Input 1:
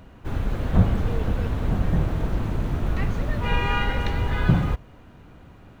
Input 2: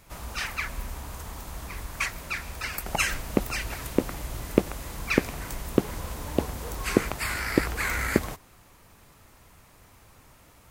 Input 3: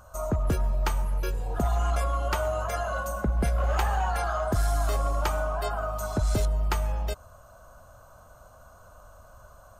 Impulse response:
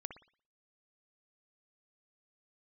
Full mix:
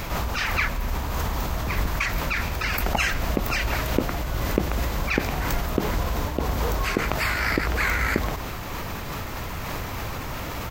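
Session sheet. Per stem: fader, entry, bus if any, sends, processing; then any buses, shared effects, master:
-8.0 dB, 0.00 s, no send, compressor with a negative ratio -29 dBFS
-1.0 dB, 0.00 s, no send, level flattener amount 70%
-6.5 dB, 1.35 s, no send, none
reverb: none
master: peaking EQ 9.6 kHz -14.5 dB 0.69 oct; random flutter of the level, depth 55%

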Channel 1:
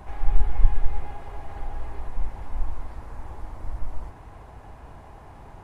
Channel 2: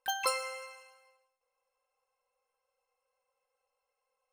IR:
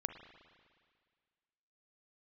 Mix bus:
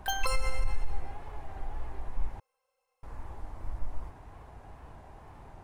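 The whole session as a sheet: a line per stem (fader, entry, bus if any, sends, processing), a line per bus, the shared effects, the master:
-5.0 dB, 0.00 s, muted 2.40–3.03 s, no send, wow and flutter 75 cents
+3.0 dB, 0.00 s, no send, none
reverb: none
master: peak limiter -18 dBFS, peak gain reduction 11.5 dB

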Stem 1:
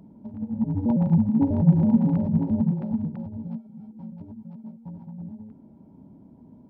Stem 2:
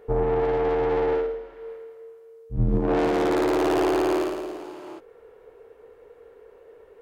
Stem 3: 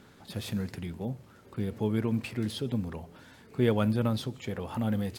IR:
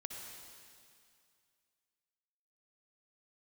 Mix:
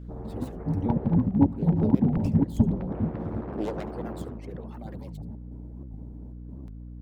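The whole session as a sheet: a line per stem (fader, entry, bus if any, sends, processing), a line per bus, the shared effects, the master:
+2.0 dB, 0.00 s, send -3.5 dB, no echo send, bass shelf 130 Hz +9.5 dB; trance gate ".xxxxx..xxxx" 185 bpm
-10.0 dB, 0.00 s, no send, no echo send, low-pass 1.2 kHz 12 dB/octave
-10.5 dB, 0.00 s, no send, echo send -15.5 dB, self-modulated delay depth 0.63 ms; reverb removal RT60 1.6 s; peaking EQ 390 Hz +13.5 dB 1.9 oct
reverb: on, RT60 2.3 s, pre-delay 52 ms
echo: delay 72 ms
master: harmonic-percussive split harmonic -15 dB; hum 60 Hz, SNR 13 dB; warped record 78 rpm, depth 250 cents

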